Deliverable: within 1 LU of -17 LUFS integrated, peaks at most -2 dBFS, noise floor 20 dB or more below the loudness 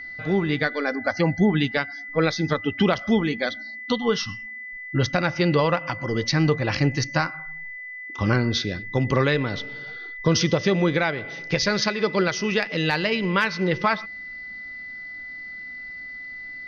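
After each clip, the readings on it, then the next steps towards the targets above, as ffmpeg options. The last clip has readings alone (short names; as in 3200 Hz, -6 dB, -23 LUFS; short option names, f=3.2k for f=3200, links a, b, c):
steady tone 2000 Hz; tone level -34 dBFS; loudness -23.5 LUFS; peak -10.0 dBFS; loudness target -17.0 LUFS
-> -af "bandreject=f=2k:w=30"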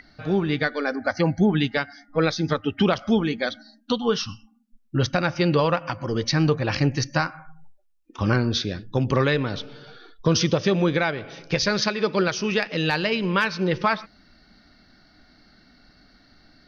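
steady tone none; loudness -23.5 LUFS; peak -10.0 dBFS; loudness target -17.0 LUFS
-> -af "volume=6.5dB"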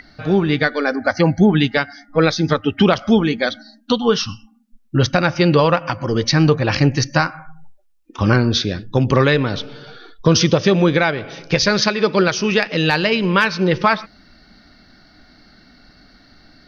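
loudness -17.0 LUFS; peak -3.5 dBFS; noise floor -52 dBFS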